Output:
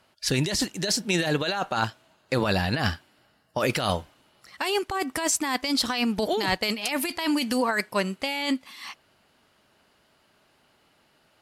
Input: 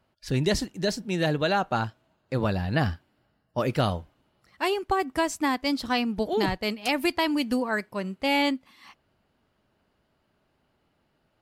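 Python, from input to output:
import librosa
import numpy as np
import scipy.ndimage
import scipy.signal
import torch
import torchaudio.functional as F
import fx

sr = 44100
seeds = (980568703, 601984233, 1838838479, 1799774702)

y = scipy.signal.sosfilt(scipy.signal.butter(2, 12000.0, 'lowpass', fs=sr, output='sos'), x)
y = fx.tilt_eq(y, sr, slope=2.5)
y = fx.over_compress(y, sr, threshold_db=-30.0, ratio=-1.0)
y = F.gain(torch.from_numpy(y), 5.0).numpy()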